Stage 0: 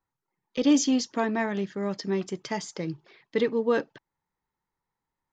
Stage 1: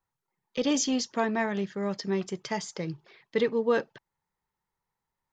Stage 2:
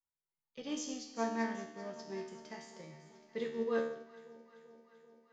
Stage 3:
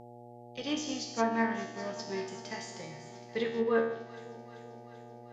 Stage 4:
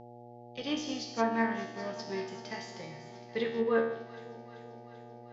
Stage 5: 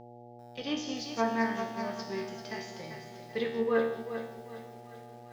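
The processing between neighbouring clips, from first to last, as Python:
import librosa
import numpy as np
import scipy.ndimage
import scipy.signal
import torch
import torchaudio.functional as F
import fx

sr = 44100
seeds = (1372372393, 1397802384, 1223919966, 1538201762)

y1 = fx.peak_eq(x, sr, hz=290.0, db=-7.5, octaves=0.38)
y2 = fx.comb_fb(y1, sr, f0_hz=76.0, decay_s=1.0, harmonics='all', damping=0.0, mix_pct=90)
y2 = fx.echo_alternate(y2, sr, ms=194, hz=920.0, feedback_pct=82, wet_db=-11.0)
y2 = fx.upward_expand(y2, sr, threshold_db=-48.0, expansion=1.5)
y2 = y2 * librosa.db_to_amplitude(2.5)
y3 = fx.dmg_buzz(y2, sr, base_hz=120.0, harmonics=7, level_db=-56.0, tilt_db=-1, odd_only=False)
y3 = fx.tilt_shelf(y3, sr, db=-3.5, hz=1400.0)
y3 = fx.env_lowpass_down(y3, sr, base_hz=2000.0, full_db=-33.0)
y3 = y3 * librosa.db_to_amplitude(8.5)
y4 = scipy.signal.sosfilt(scipy.signal.butter(4, 5700.0, 'lowpass', fs=sr, output='sos'), y3)
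y5 = fx.echo_crushed(y4, sr, ms=393, feedback_pct=35, bits=9, wet_db=-9)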